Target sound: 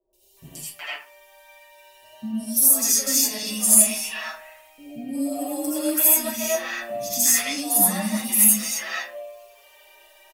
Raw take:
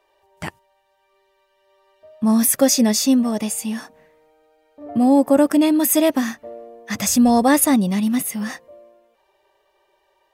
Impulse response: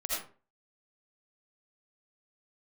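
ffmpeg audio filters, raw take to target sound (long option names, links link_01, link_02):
-filter_complex "[0:a]equalizer=frequency=2600:width_type=o:width=0.34:gain=7.5,areverse,acompressor=threshold=-27dB:ratio=6,areverse,alimiter=level_in=0.5dB:limit=-24dB:level=0:latency=1:release=167,volume=-0.5dB,acrossover=split=450|4100[link_01][link_02][link_03];[link_03]adelay=130[link_04];[link_02]adelay=370[link_05];[link_01][link_05][link_04]amix=inputs=3:normalize=0,crystalizer=i=6.5:c=0,asplit=2[link_06][link_07];[link_07]asoftclip=type=tanh:threshold=-16.5dB,volume=-9dB[link_08];[link_06][link_08]amix=inputs=2:normalize=0,asplit=2[link_09][link_10];[link_10]adelay=14,volume=-11dB[link_11];[link_09][link_11]amix=inputs=2:normalize=0[link_12];[1:a]atrim=start_sample=2205[link_13];[link_12][link_13]afir=irnorm=-1:irlink=0,asplit=2[link_14][link_15];[link_15]adelay=5.8,afreqshift=0.47[link_16];[link_14][link_16]amix=inputs=2:normalize=1"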